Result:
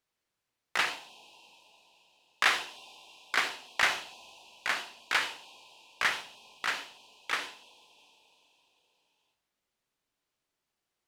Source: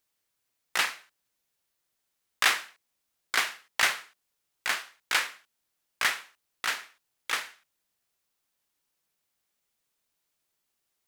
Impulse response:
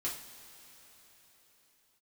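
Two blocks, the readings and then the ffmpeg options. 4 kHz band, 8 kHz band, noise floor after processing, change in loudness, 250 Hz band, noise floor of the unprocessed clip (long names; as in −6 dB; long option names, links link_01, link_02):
−2.5 dB, −7.0 dB, below −85 dBFS, −2.0 dB, +1.5 dB, −80 dBFS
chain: -filter_complex "[0:a]aemphasis=mode=reproduction:type=50kf,asplit=2[link_01][link_02];[link_02]asuperstop=centerf=1600:order=20:qfactor=1.1[link_03];[1:a]atrim=start_sample=2205,adelay=58[link_04];[link_03][link_04]afir=irnorm=-1:irlink=0,volume=-7.5dB[link_05];[link_01][link_05]amix=inputs=2:normalize=0"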